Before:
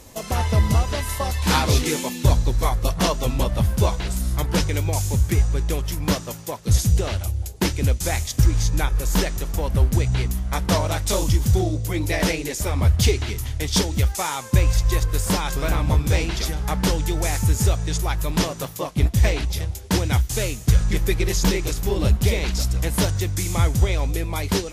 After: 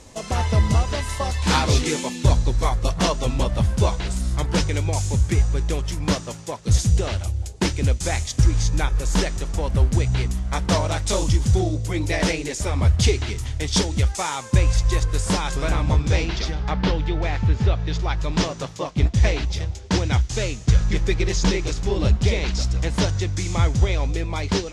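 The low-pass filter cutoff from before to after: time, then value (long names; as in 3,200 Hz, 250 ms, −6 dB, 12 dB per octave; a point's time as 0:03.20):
low-pass filter 24 dB per octave
0:15.64 9,000 Hz
0:17.07 3,800 Hz
0:17.72 3,800 Hz
0:18.40 6,800 Hz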